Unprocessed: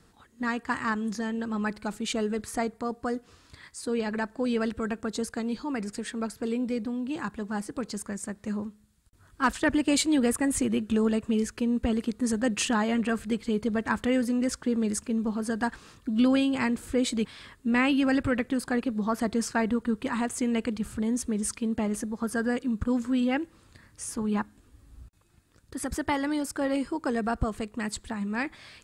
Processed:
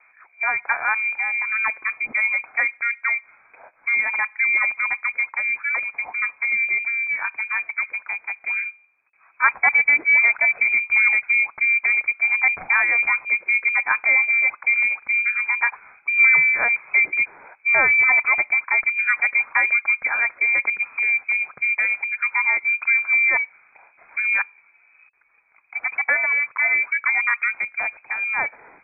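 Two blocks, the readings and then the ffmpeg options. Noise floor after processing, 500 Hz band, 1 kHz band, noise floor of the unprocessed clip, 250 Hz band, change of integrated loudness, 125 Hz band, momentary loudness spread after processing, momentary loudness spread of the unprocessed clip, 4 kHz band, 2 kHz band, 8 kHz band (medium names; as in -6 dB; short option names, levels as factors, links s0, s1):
-58 dBFS, -9.5 dB, +5.0 dB, -60 dBFS, under -25 dB, +10.0 dB, under -15 dB, 10 LU, 9 LU, under -40 dB, +19.5 dB, under -40 dB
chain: -filter_complex "[0:a]acrossover=split=160 2000:gain=0.0794 1 0.224[s0][s1][s2];[s0][s1][s2]amix=inputs=3:normalize=0,lowpass=f=2200:t=q:w=0.5098,lowpass=f=2200:t=q:w=0.6013,lowpass=f=2200:t=q:w=0.9,lowpass=f=2200:t=q:w=2.563,afreqshift=-2600,volume=2.66"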